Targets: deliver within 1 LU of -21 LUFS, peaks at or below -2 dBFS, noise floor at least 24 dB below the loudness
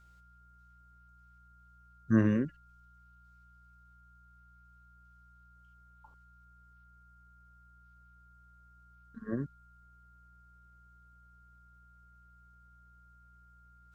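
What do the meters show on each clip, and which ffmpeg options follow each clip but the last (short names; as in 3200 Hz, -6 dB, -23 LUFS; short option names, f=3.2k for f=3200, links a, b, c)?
hum 60 Hz; harmonics up to 180 Hz; hum level -60 dBFS; steady tone 1400 Hz; tone level -61 dBFS; loudness -31.5 LUFS; peak -14.0 dBFS; loudness target -21.0 LUFS
-> -af "bandreject=f=60:t=h:w=4,bandreject=f=120:t=h:w=4,bandreject=f=180:t=h:w=4"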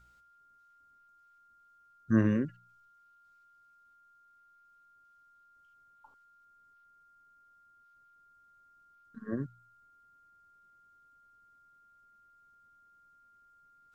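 hum none; steady tone 1400 Hz; tone level -61 dBFS
-> -af "bandreject=f=1.4k:w=30"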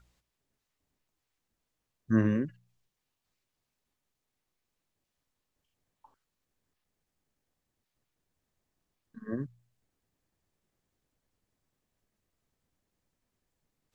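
steady tone none; loudness -31.0 LUFS; peak -14.5 dBFS; loudness target -21.0 LUFS
-> -af "volume=10dB"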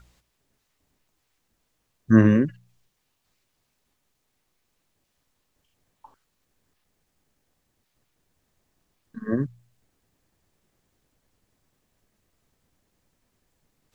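loudness -21.5 LUFS; peak -4.5 dBFS; noise floor -75 dBFS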